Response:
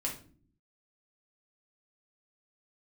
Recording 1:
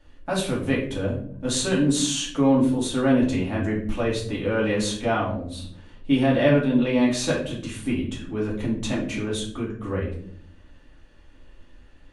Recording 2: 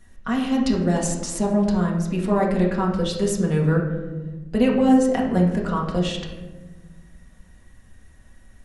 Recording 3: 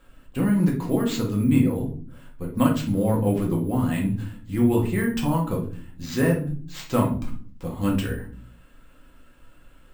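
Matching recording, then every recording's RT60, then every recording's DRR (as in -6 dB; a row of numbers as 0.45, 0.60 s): 3; 0.65 s, 1.3 s, not exponential; -6.0, -2.0, -2.0 dB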